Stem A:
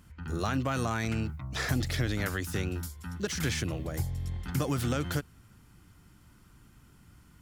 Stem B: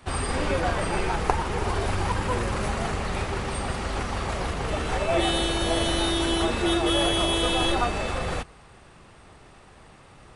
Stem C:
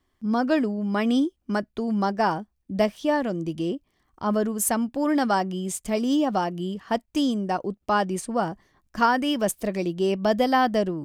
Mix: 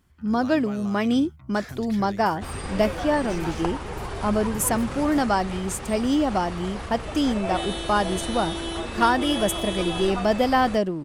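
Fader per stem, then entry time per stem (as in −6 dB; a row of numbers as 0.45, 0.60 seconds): −9.0, −6.0, +0.5 decibels; 0.00, 2.35, 0.00 seconds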